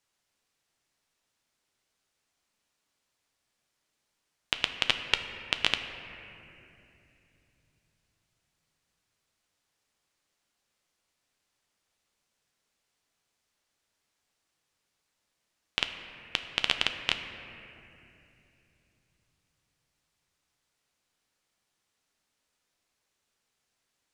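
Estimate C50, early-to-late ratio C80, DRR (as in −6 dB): 8.0 dB, 8.5 dB, 6.0 dB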